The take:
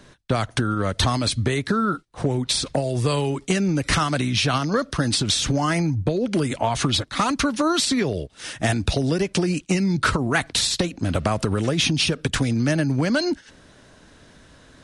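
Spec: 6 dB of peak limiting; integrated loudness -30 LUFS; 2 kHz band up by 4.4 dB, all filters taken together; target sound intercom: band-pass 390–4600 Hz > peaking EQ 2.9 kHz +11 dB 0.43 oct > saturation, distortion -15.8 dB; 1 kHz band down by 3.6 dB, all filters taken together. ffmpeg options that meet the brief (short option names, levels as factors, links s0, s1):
-af "equalizer=f=1000:t=o:g=-7,equalizer=f=2000:t=o:g=4,alimiter=limit=0.188:level=0:latency=1,highpass=390,lowpass=4600,equalizer=f=2900:t=o:w=0.43:g=11,asoftclip=threshold=0.158,volume=0.668"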